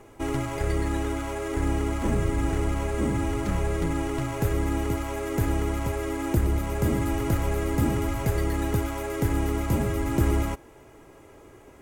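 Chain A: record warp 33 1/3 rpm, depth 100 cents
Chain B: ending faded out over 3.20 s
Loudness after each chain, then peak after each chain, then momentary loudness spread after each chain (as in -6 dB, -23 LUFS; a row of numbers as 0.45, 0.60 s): -27.0, -27.5 LUFS; -10.5, -11.5 dBFS; 4, 5 LU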